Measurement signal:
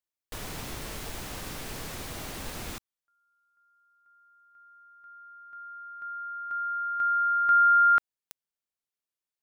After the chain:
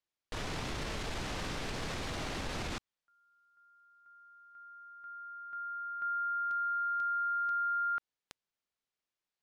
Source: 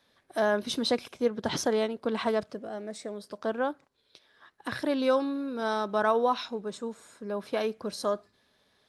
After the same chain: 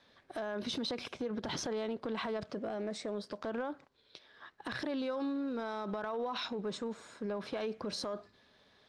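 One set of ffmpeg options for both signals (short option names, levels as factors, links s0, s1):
-af "lowpass=5400,acompressor=threshold=0.02:ratio=12:attack=0.27:release=66:knee=1:detection=peak,volume=1.41"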